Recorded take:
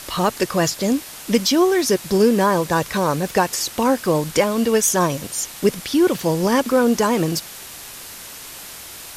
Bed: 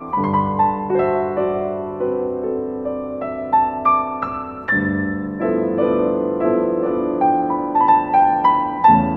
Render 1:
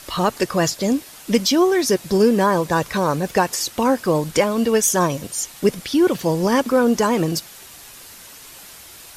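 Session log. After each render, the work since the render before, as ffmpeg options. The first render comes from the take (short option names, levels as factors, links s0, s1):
-af "afftdn=nr=6:nf=-37"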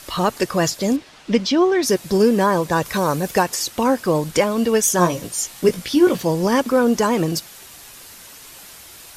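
-filter_complex "[0:a]asettb=1/sr,asplit=3[s0][s1][s2];[s0]atrim=end=0.964[s3];[s1]atrim=start=0.96:end=1.83,asetpts=PTS-STARTPTS,afade=t=in:d=0.004:c=qsin,afade=t=out:st=0.866:d=0.004:c=qsin,lowpass=4200[s4];[s2]atrim=start=1.826[s5];[s3][s4]acrossfade=d=0.004:c1=hsin:c2=qsin[s6];[s6][s5]acrossfade=d=0.004:c1=qsin:c2=hsin,asettb=1/sr,asplit=3[s7][s8][s9];[s7]atrim=end=2.854[s10];[s8]atrim=start=2.85:end=3.43,asetpts=PTS-STARTPTS,afade=t=in:d=0.004:c=qsin,afade=t=out:st=0.576:d=0.004:c=qsin,highshelf=f=7600:g=8[s11];[s9]atrim=start=3.426[s12];[s10][s11]acrossfade=d=0.004:c1=hsin:c2=qsin[s13];[s13][s12]acrossfade=d=0.004:c1=qsin:c2=hsin,asettb=1/sr,asplit=3[s14][s15][s16];[s14]atrim=end=4.974[s17];[s15]atrim=start=4.97:end=6.23,asetpts=PTS-STARTPTS,afade=t=in:d=0.004:c=qsin,afade=t=out:st=1.256:d=0.004:c=qsin,asplit=2[s18][s19];[s19]adelay=17,volume=0.562[s20];[s18][s20]amix=inputs=2:normalize=0,atrim=end_sample=55566[s21];[s16]atrim=start=6.226[s22];[s17][s21]acrossfade=d=0.004:c1=hsin:c2=qsin[s23];[s23][s22]acrossfade=d=0.004:c1=qsin:c2=hsin"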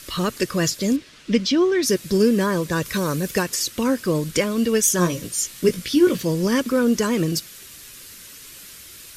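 -af "equalizer=f=800:t=o:w=0.78:g=-15"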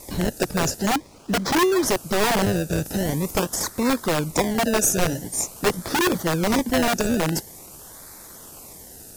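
-filter_complex "[0:a]acrossover=split=400|5000[s0][s1][s2];[s0]aeval=exprs='(mod(7.08*val(0)+1,2)-1)/7.08':c=same[s3];[s1]acrusher=samples=28:mix=1:aa=0.000001:lfo=1:lforange=28:lforate=0.46[s4];[s3][s4][s2]amix=inputs=3:normalize=0"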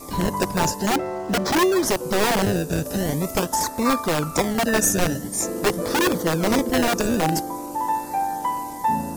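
-filter_complex "[1:a]volume=0.299[s0];[0:a][s0]amix=inputs=2:normalize=0"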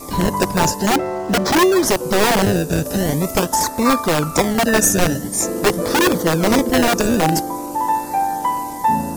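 -af "volume=1.78,alimiter=limit=0.708:level=0:latency=1"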